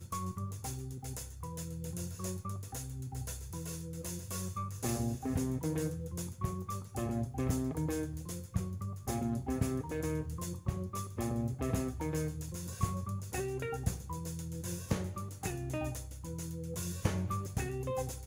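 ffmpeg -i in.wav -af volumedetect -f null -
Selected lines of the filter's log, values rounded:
mean_volume: -37.1 dB
max_volume: -17.4 dB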